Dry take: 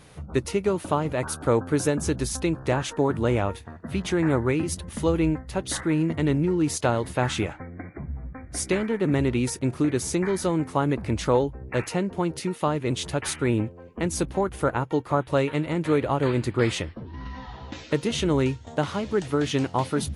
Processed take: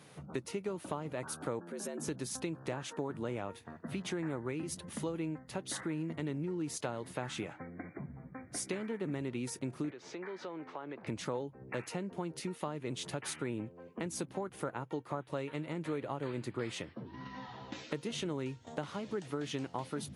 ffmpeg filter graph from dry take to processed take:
ffmpeg -i in.wav -filter_complex "[0:a]asettb=1/sr,asplit=3[link_01][link_02][link_03];[link_01]atrim=end=1.594[link_04];[link_02]atrim=start=1.59:end=2.08,asetpts=PTS-STARTPTS,afade=type=in:duration=0.004:curve=qsin,afade=type=out:start_time=0.486:duration=0.004:curve=qsin,acompressor=threshold=-29dB:ratio=6:attack=3.2:release=140:knee=1:detection=peak,afreqshift=83[link_05];[link_03]atrim=start=2.076[link_06];[link_04][link_05]acrossfade=duration=0.004:curve1=hsin:curve2=qsin[link_07];[link_07][link_06]acrossfade=duration=0.004:curve1=qsin:curve2=hsin,asettb=1/sr,asplit=3[link_08][link_09][link_10];[link_08]atrim=end=9.904[link_11];[link_09]atrim=start=9.9:end=11.07,asetpts=PTS-STARTPTS,afade=type=in:duration=0.004:curve=qsin,afade=type=out:start_time=1.166:duration=0.004:curve=qsin,lowpass=frequency=6500:width=0.5412,lowpass=frequency=6500:width=1.3066,acrossover=split=330 4000:gain=0.158 1 0.112[link_12][link_13][link_14];[link_12][link_13][link_14]amix=inputs=3:normalize=0,acompressor=threshold=-37dB:ratio=2.5:attack=3.2:release=140:knee=1:detection=peak[link_15];[link_10]atrim=start=11.066[link_16];[link_11][link_15]acrossfade=duration=0.004:curve1=hsin:curve2=qsin[link_17];[link_17][link_16]acrossfade=duration=0.004:curve1=qsin:curve2=hsin,highpass=frequency=120:width=0.5412,highpass=frequency=120:width=1.3066,acompressor=threshold=-31dB:ratio=3,volume=-5.5dB" out.wav

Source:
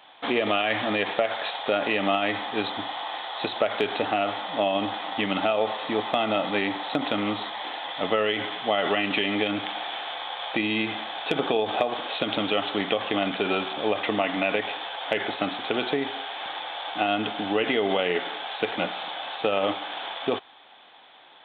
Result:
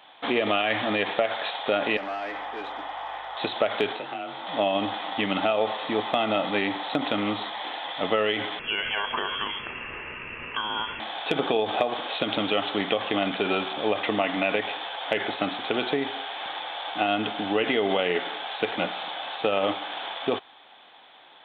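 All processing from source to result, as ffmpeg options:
ffmpeg -i in.wav -filter_complex "[0:a]asettb=1/sr,asplit=3[link_01][link_02][link_03];[link_01]atrim=end=1.974[link_04];[link_02]atrim=start=1.97:end=3.37,asetpts=PTS-STARTPTS,afade=type=in:duration=0.004:curve=qsin,afade=type=out:start_time=1.396:duration=0.004:curve=qsin,asoftclip=type=hard:threshold=-27dB,highpass=440,lowpass=2100,aeval=exprs='val(0)+0.000708*(sin(2*PI*50*n/s)+sin(2*PI*2*50*n/s)/2+sin(2*PI*3*50*n/s)/3+sin(2*PI*4*50*n/s)/4+sin(2*PI*5*50*n/s)/5)':channel_layout=same[link_05];[link_03]atrim=start=3.366[link_06];[link_04][link_05]acrossfade=duration=0.004:curve1=hsin:curve2=qsin[link_07];[link_07][link_06]acrossfade=duration=0.004:curve1=qsin:curve2=hsin,asettb=1/sr,asplit=3[link_08][link_09][link_10];[link_08]atrim=end=3.924[link_11];[link_09]atrim=start=3.92:end=4.47,asetpts=PTS-STARTPTS,afade=type=in:duration=0.004:curve=qsin,afade=type=out:start_time=0.546:duration=0.004:curve=qsin,afreqshift=28,acrossover=split=760|3000[link_12][link_13][link_14];[link_12]acompressor=threshold=-39dB:ratio=4[link_15];[link_13]acompressor=threshold=-40dB:ratio=4[link_16];[link_14]acompressor=threshold=-49dB:ratio=4[link_17];[link_15][link_16][link_17]amix=inputs=3:normalize=0,asplit=2[link_18][link_19];[link_19]adelay=21,volume=-6.5dB[link_20];[link_18][link_20]amix=inputs=2:normalize=0,atrim=end_sample=24255[link_21];[link_10]atrim=start=4.466[link_22];[link_11][link_21]acrossfade=duration=0.004:curve1=hsin:curve2=qsin[link_23];[link_23][link_22]acrossfade=duration=0.004:curve1=qsin:curve2=hsin,asettb=1/sr,asplit=3[link_24][link_25][link_26];[link_24]atrim=end=8.594[link_27];[link_25]atrim=start=8.59:end=11,asetpts=PTS-STARTPTS,afade=type=in:duration=0.004:curve=qsin,afade=type=out:start_time=2.406:duration=0.004:curve=qsin,equalizer=frequency=400:width_type=o:width=1.7:gain=-10,lowpass=frequency=3000:width_type=q:width=0.5098,lowpass=frequency=3000:width_type=q:width=0.6013,lowpass=frequency=3000:width_type=q:width=0.9,lowpass=frequency=3000:width_type=q:width=2.563,afreqshift=-3500[link_28];[link_26]atrim=start=10.996[link_29];[link_27][link_28]acrossfade=duration=0.004:curve1=hsin:curve2=qsin[link_30];[link_30][link_29]acrossfade=duration=0.004:curve1=qsin:curve2=hsin" out.wav

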